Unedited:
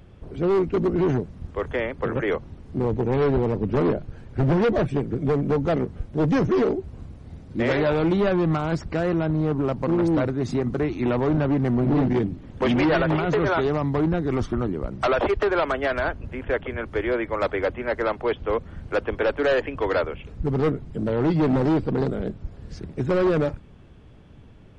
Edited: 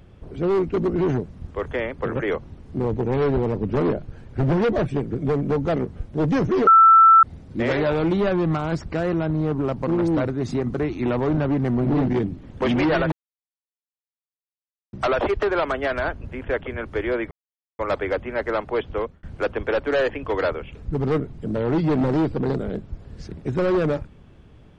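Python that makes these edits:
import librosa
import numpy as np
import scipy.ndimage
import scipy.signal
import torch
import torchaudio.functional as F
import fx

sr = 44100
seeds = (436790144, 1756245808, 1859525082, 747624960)

y = fx.edit(x, sr, fx.bleep(start_s=6.67, length_s=0.56, hz=1330.0, db=-8.0),
    fx.silence(start_s=13.12, length_s=1.81),
    fx.insert_silence(at_s=17.31, length_s=0.48),
    fx.fade_out_span(start_s=18.47, length_s=0.28), tone=tone)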